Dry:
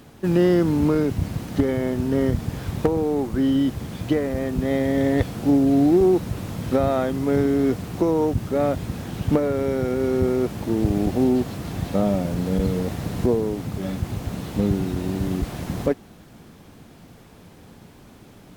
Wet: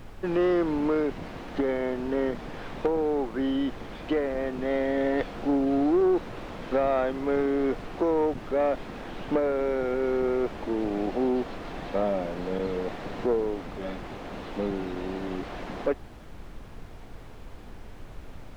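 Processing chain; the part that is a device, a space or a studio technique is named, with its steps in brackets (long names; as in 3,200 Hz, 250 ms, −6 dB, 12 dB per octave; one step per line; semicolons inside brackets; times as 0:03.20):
aircraft cabin announcement (band-pass filter 380–3,000 Hz; soft clipping −16 dBFS, distortion −20 dB; brown noise bed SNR 13 dB)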